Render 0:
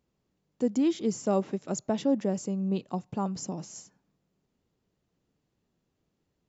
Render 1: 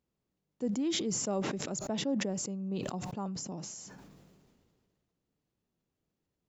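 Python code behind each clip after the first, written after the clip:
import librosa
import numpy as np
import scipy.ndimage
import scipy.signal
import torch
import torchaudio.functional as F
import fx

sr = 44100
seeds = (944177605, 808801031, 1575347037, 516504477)

y = fx.sustainer(x, sr, db_per_s=28.0)
y = y * 10.0 ** (-7.5 / 20.0)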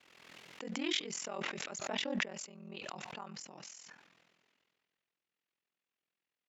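y = x * np.sin(2.0 * np.pi * 21.0 * np.arange(len(x)) / sr)
y = fx.bandpass_q(y, sr, hz=2300.0, q=1.4)
y = fx.pre_swell(y, sr, db_per_s=37.0)
y = y * 10.0 ** (6.5 / 20.0)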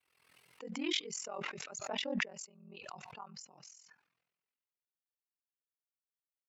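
y = fx.bin_expand(x, sr, power=1.5)
y = y * 10.0 ** (1.5 / 20.0)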